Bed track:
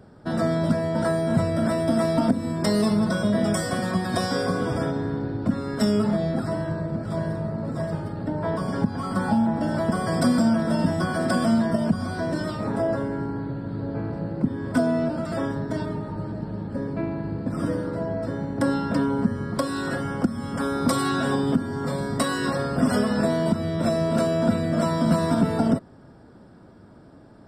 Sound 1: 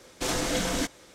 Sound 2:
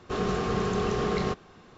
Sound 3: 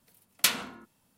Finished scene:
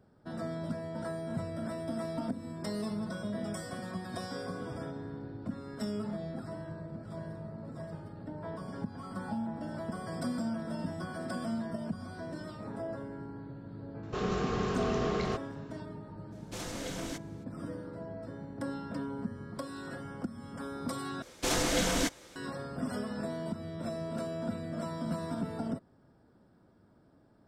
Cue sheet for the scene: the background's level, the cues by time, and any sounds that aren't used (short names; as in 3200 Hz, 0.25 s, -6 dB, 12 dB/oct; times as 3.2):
bed track -14.5 dB
14.03 add 2 -4.5 dB
16.31 add 1 -12.5 dB, fades 0.02 s
21.22 replace with 1 -1 dB
not used: 3